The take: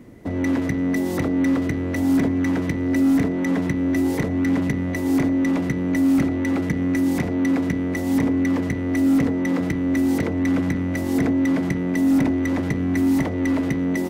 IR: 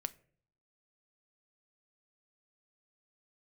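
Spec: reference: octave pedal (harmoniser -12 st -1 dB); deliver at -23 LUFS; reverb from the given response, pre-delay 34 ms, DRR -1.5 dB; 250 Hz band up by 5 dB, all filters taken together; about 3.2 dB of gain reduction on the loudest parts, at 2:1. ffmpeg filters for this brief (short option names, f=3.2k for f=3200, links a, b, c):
-filter_complex "[0:a]equalizer=f=250:t=o:g=5.5,acompressor=threshold=-16dB:ratio=2,asplit=2[a][b];[1:a]atrim=start_sample=2205,adelay=34[c];[b][c]afir=irnorm=-1:irlink=0,volume=3dB[d];[a][d]amix=inputs=2:normalize=0,asplit=2[e][f];[f]asetrate=22050,aresample=44100,atempo=2,volume=-1dB[g];[e][g]amix=inputs=2:normalize=0,volume=-11.5dB"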